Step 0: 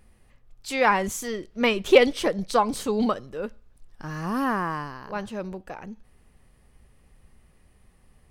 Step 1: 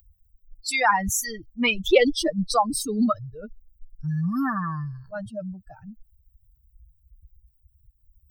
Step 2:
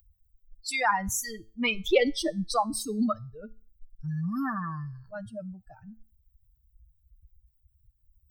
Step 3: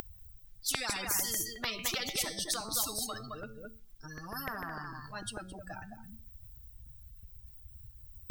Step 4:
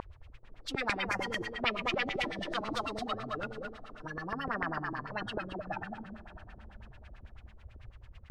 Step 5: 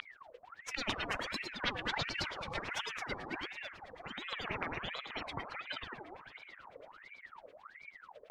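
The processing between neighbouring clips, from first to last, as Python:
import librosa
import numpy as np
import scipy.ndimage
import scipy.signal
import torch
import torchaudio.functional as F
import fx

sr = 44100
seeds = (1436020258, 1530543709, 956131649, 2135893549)

y1 = fx.bin_expand(x, sr, power=3.0)
y1 = fx.env_flatten(y1, sr, amount_pct=50)
y2 = fx.comb_fb(y1, sr, f0_hz=110.0, decay_s=0.38, harmonics='all', damping=0.0, mix_pct=40)
y2 = y2 * librosa.db_to_amplitude(-1.5)
y3 = fx.filter_lfo_notch(y2, sr, shape='saw_up', hz=6.7, low_hz=230.0, high_hz=3000.0, q=1.4)
y3 = y3 + 10.0 ** (-17.0 / 20.0) * np.pad(y3, (int(216 * sr / 1000.0), 0))[:len(y3)]
y3 = fx.spectral_comp(y3, sr, ratio=10.0)
y4 = fx.envelope_flatten(y3, sr, power=0.6)
y4 = fx.echo_diffused(y4, sr, ms=584, feedback_pct=42, wet_db=-14.5)
y4 = fx.filter_lfo_lowpass(y4, sr, shape='sine', hz=9.1, low_hz=330.0, high_hz=2800.0, q=2.6)
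y4 = y4 * librosa.db_to_amplitude(3.5)
y5 = fx.ring_lfo(y4, sr, carrier_hz=1400.0, swing_pct=65, hz=1.4)
y5 = y5 * librosa.db_to_amplitude(-1.5)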